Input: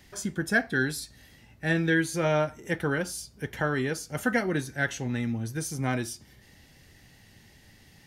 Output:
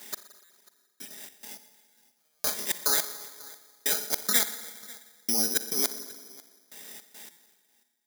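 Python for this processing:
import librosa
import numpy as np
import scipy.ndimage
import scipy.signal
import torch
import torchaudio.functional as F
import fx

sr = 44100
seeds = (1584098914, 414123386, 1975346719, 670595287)

p1 = fx.spec_clip(x, sr, under_db=16)
p2 = scipy.signal.sosfilt(scipy.signal.butter(4, 200.0, 'highpass', fs=sr, output='sos'), p1)
p3 = p2 + 0.62 * np.pad(p2, (int(4.8 * sr / 1000.0), 0))[:len(p2)]
p4 = fx.step_gate(p3, sr, bpm=105, pattern='x......xx.', floor_db=-60.0, edge_ms=4.5)
p5 = fx.over_compress(p4, sr, threshold_db=-35.0, ratio=-0.5)
p6 = p4 + (p5 * 10.0 ** (2.5 / 20.0))
p7 = p6 + 10.0 ** (-22.5 / 20.0) * np.pad(p6, (int(542 * sr / 1000.0), 0))[:len(p6)]
p8 = fx.rev_spring(p7, sr, rt60_s=1.7, pass_ms=(41, 57), chirp_ms=55, drr_db=11.0)
p9 = (np.kron(scipy.signal.resample_poly(p8, 1, 8), np.eye(8)[0]) * 8)[:len(p8)]
p10 = fx.buffer_glitch(p9, sr, at_s=(0.44, 2.39, 7.31), block=256, repeats=8)
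y = p10 * 10.0 ** (-7.5 / 20.0)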